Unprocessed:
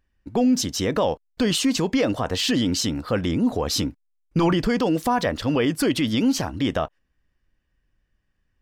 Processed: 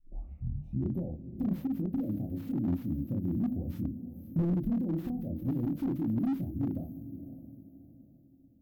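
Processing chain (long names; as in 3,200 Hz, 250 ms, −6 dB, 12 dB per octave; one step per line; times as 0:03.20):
turntable start at the beginning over 1.12 s
high-pass filter 78 Hz 6 dB per octave
parametric band 110 Hz −2 dB 2.3 octaves
phaser with its sweep stopped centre 2,200 Hz, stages 8
spring reverb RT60 3.6 s, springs 52 ms, DRR 19.5 dB
downward compressor 2 to 1, threshold −29 dBFS, peak gain reduction 6 dB
inverse Chebyshev band-stop filter 970–7,800 Hz, stop band 50 dB
high-shelf EQ 9,700 Hz +6 dB
mains-hum notches 50/100/150/200/250/300 Hz
chorus effect 1.1 Hz, depth 7.5 ms
on a send: feedback delay with all-pass diffusion 525 ms, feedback 40%, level −12.5 dB
on the sum: slew-rate limiting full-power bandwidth 6.8 Hz
level +5 dB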